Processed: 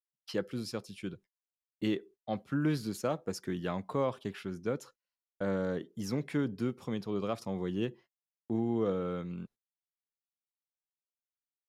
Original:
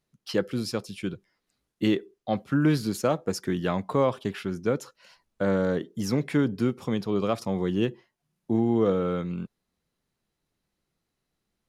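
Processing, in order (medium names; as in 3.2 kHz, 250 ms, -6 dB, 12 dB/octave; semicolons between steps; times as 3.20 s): gate -46 dBFS, range -33 dB; trim -8 dB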